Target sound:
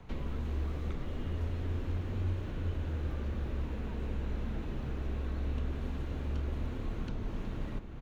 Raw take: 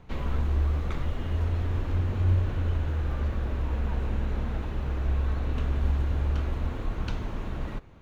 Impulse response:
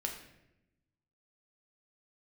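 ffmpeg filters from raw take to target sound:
-filter_complex "[0:a]acrossover=split=160|480|1800[a][b][c][d];[a]acompressor=threshold=-35dB:ratio=4[e];[b]acompressor=threshold=-42dB:ratio=4[f];[c]acompressor=threshold=-56dB:ratio=4[g];[d]acompressor=threshold=-57dB:ratio=4[h];[e][f][g][h]amix=inputs=4:normalize=0,asplit=2[i][j];[j]adelay=367.3,volume=-8dB,highshelf=f=4k:g=-8.27[k];[i][k]amix=inputs=2:normalize=0"

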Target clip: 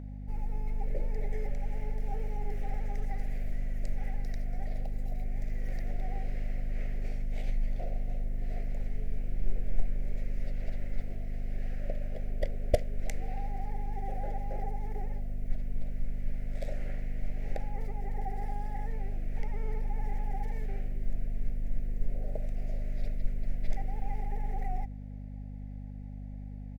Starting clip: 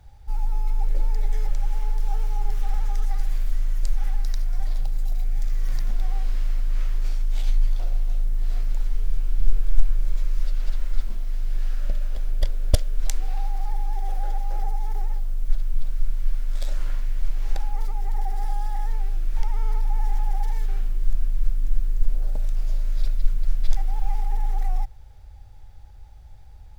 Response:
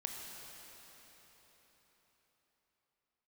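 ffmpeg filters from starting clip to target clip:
-af "firequalizer=gain_entry='entry(240,0);entry(410,10);entry(690,9);entry(1000,-18);entry(2000,4);entry(3300,-12)':delay=0.05:min_phase=1,aeval=exprs='val(0)+0.0355*(sin(2*PI*50*n/s)+sin(2*PI*2*50*n/s)/2+sin(2*PI*3*50*n/s)/3+sin(2*PI*4*50*n/s)/4+sin(2*PI*5*50*n/s)/5)':c=same,lowshelf=f=390:g=-8.5,volume=-2.5dB"

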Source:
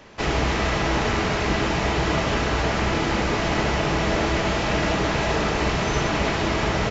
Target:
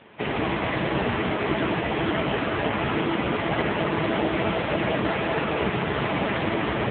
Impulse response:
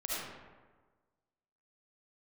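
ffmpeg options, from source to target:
-filter_complex "[0:a]acrusher=bits=3:mode=log:mix=0:aa=0.000001,asplit=2[a][b];[1:a]atrim=start_sample=2205[c];[b][c]afir=irnorm=-1:irlink=0,volume=-11dB[d];[a][d]amix=inputs=2:normalize=0" -ar 8000 -c:a libopencore_amrnb -b:a 5900

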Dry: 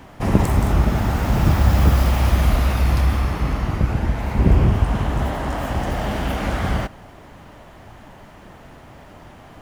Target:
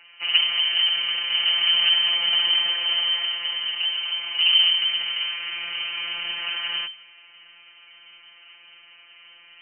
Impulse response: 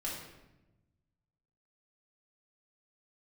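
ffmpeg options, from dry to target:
-af "aeval=exprs='0.891*(cos(1*acos(clip(val(0)/0.891,-1,1)))-cos(1*PI/2))+0.0891*(cos(3*acos(clip(val(0)/0.891,-1,1)))-cos(3*PI/2))+0.178*(cos(4*acos(clip(val(0)/0.891,-1,1)))-cos(4*PI/2))':c=same,afftfilt=real='hypot(re,im)*cos(PI*b)':imag='0':win_size=1024:overlap=0.75,lowpass=f=2.6k:t=q:w=0.5098,lowpass=f=2.6k:t=q:w=0.6013,lowpass=f=2.6k:t=q:w=0.9,lowpass=f=2.6k:t=q:w=2.563,afreqshift=-3100"

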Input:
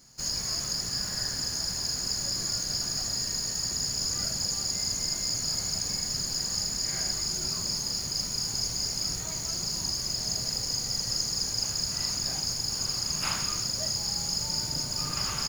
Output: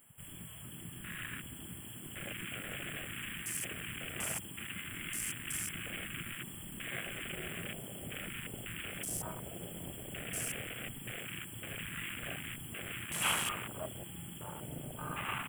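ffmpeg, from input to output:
-af "dynaudnorm=f=390:g=9:m=3.5dB,crystalizer=i=2:c=0,asoftclip=type=tanh:threshold=-25dB,alimiter=level_in=9dB:limit=-24dB:level=0:latency=1:release=167,volume=-9dB,equalizer=f=4.1k:w=1.3:g=9,afftfilt=real='re*(1-between(b*sr/4096,3400,7300))':imag='im*(1-between(b*sr/4096,3400,7300))':win_size=4096:overlap=0.75,lowshelf=f=100:g=-11.5,bandreject=f=50:t=h:w=6,bandreject=f=100:t=h:w=6,bandreject=f=150:t=h:w=6,bandreject=f=200:t=h:w=6,bandreject=f=250:t=h:w=6,bandreject=f=300:t=h:w=6,afwtdn=0.00398,volume=10.5dB"

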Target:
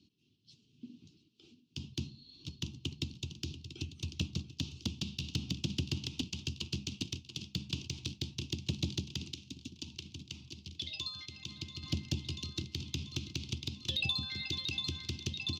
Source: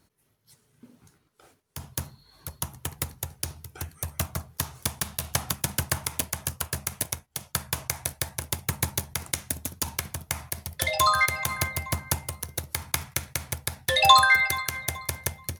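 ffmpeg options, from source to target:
-filter_complex "[0:a]highpass=78,aecho=1:1:687|1374|2061|2748|3435|4122:0.168|0.0957|0.0545|0.0311|0.0177|0.0101,asettb=1/sr,asplit=3[a][b][c];[a]atrim=end=9.324[d];[b]atrim=start=9.32:end=11.83,asetpts=PTS-STARTPTS,afade=t=in:d=0.004:c=qsin,afade=t=out:st=2.506:d=0.004:c=qsin,acompressor=threshold=-42dB:ratio=2[e];[c]atrim=start=11.826[f];[d][e]acrossfade=d=0.004:c1=hsin:c2=qsin[g];[g][f]acrossfade=d=0.004:c1=qsin:c2=hsin,firequalizer=gain_entry='entry(140,0);entry(210,5);entry(320,6);entry(570,-27);entry(940,-21);entry(1800,-29);entry(2700,8);entry(4800,6);entry(7200,-6);entry(10000,-27)':delay=0.05:min_phase=1,acrossover=split=480[h][i];[i]acompressor=threshold=-29dB:ratio=4[j];[h][j]amix=inputs=2:normalize=0,asoftclip=type=tanh:threshold=-20dB,highshelf=f=8.6k:g=-12,volume=-2dB"

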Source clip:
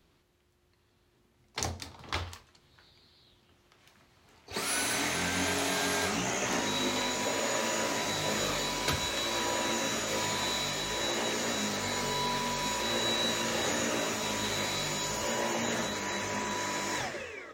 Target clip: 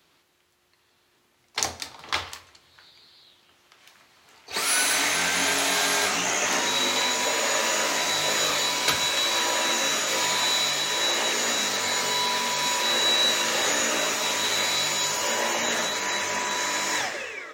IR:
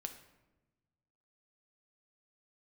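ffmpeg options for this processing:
-filter_complex "[0:a]highpass=f=880:p=1,asplit=2[a][b];[1:a]atrim=start_sample=2205,lowshelf=f=140:g=9.5[c];[b][c]afir=irnorm=-1:irlink=0,volume=0dB[d];[a][d]amix=inputs=2:normalize=0,volume=4.5dB"

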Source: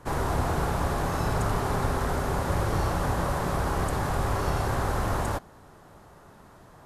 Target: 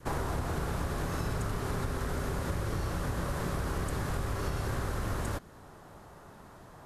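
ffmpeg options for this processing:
-af "adynamicequalizer=threshold=0.00501:dfrequency=810:dqfactor=1.6:tfrequency=810:tqfactor=1.6:attack=5:release=100:ratio=0.375:range=4:mode=cutabove:tftype=bell,acompressor=threshold=-29dB:ratio=6"

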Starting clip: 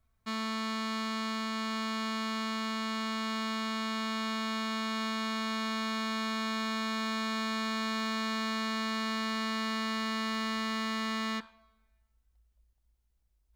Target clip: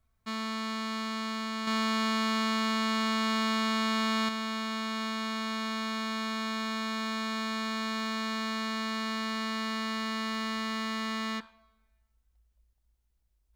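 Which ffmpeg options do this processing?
-filter_complex "[0:a]asettb=1/sr,asplit=3[a][b][c];[a]atrim=end=1.674[d];[b]atrim=start=1.67:end=4.29,asetpts=PTS-STARTPTS,afade=t=in:d=0.004:c=qsin,afade=t=out:st=2.616:d=0.004:c=qsin,acontrast=33[e];[c]atrim=start=4.286[f];[d][e]acrossfade=d=0.004:c1=hsin:c2=qsin[g];[g][f]acrossfade=d=0.004:c1=qsin:c2=hsin"

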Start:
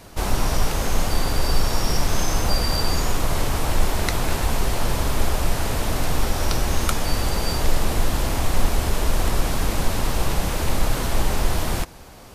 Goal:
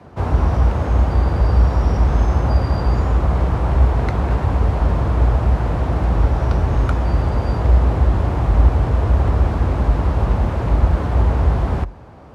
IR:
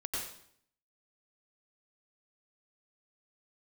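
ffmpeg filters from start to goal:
-af "lowpass=1.1k,aemphasis=mode=production:type=75kf,afreqshift=45,volume=3dB"

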